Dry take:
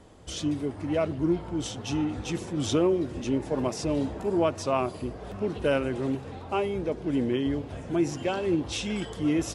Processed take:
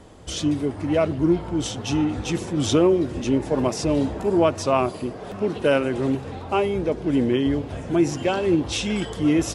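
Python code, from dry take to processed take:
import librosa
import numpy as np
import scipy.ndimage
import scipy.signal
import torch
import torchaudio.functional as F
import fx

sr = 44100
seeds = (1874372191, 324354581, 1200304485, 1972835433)

y = fx.peak_eq(x, sr, hz=60.0, db=-13.0, octaves=1.2, at=(4.91, 5.95))
y = y * librosa.db_to_amplitude(6.0)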